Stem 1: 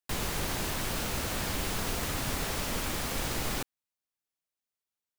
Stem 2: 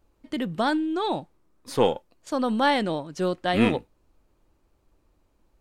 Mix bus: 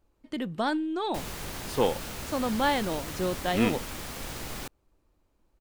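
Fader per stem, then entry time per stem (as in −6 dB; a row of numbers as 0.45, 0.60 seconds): −5.0, −4.0 decibels; 1.05, 0.00 seconds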